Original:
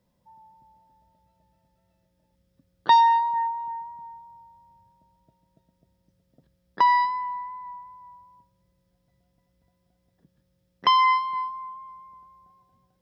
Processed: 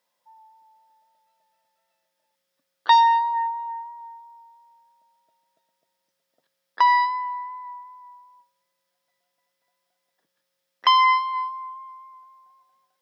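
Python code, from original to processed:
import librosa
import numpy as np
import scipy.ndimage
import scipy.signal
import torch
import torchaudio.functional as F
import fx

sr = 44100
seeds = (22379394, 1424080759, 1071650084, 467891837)

y = scipy.signal.sosfilt(scipy.signal.butter(2, 920.0, 'highpass', fs=sr, output='sos'), x)
y = y * librosa.db_to_amplitude(4.0)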